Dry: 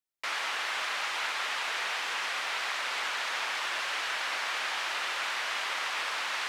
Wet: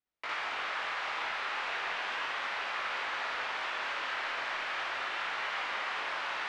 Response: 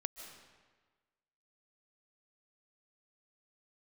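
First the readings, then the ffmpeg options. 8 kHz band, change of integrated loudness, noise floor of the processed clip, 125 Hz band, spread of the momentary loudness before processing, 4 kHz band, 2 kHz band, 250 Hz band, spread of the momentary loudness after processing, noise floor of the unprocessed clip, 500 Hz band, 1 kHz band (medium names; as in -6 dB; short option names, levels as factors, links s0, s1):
-14.0 dB, -3.0 dB, -37 dBFS, no reading, 0 LU, -6.0 dB, -2.5 dB, +1.0 dB, 0 LU, -34 dBFS, 0.0 dB, -1.0 dB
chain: -filter_complex "[0:a]asoftclip=type=tanh:threshold=0.0668,acompressor=threshold=0.0141:ratio=6,flanger=delay=17.5:depth=7.9:speed=0.37,lowpass=f=3600:p=1,aemphasis=mode=reproduction:type=50fm,asplit=2[s0][s1];[1:a]atrim=start_sample=2205,adelay=57[s2];[s1][s2]afir=irnorm=-1:irlink=0,volume=1.41[s3];[s0][s3]amix=inputs=2:normalize=0,volume=1.88"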